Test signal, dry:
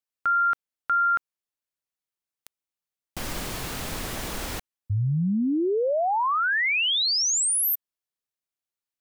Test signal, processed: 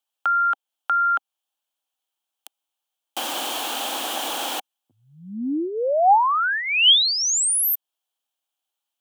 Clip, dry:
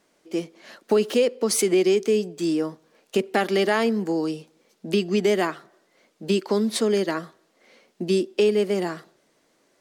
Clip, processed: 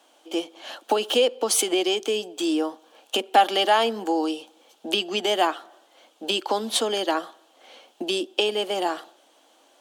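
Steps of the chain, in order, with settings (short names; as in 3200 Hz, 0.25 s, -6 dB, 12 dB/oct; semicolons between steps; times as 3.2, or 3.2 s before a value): steep high-pass 280 Hz 36 dB/oct; in parallel at +1 dB: compressor, threshold -32 dBFS; on the sum: thirty-one-band EQ 400 Hz -10 dB, 800 Hz +9 dB, 2000 Hz -9 dB, 3150 Hz +10 dB, 5000 Hz -4 dB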